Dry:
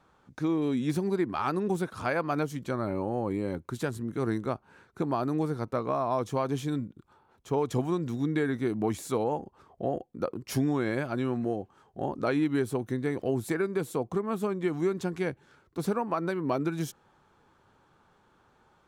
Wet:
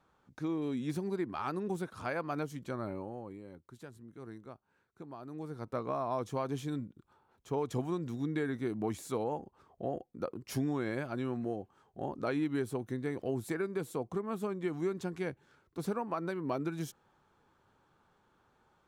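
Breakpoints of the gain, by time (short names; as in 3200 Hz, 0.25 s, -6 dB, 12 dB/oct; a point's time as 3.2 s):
2.86 s -7 dB
3.43 s -18 dB
5.2 s -18 dB
5.76 s -6 dB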